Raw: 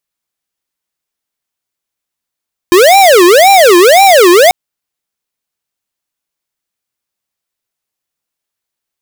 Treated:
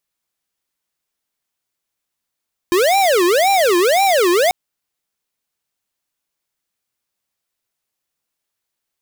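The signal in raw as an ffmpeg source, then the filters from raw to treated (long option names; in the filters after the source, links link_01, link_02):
-f lavfi -i "aevalsrc='0.631*(2*lt(mod((569.5*t-224.5/(2*PI*1.9)*sin(2*PI*1.9*t)),1),0.5)-1)':duration=1.79:sample_rate=44100"
-af "aeval=exprs='0.211*(abs(mod(val(0)/0.211+3,4)-2)-1)':channel_layout=same"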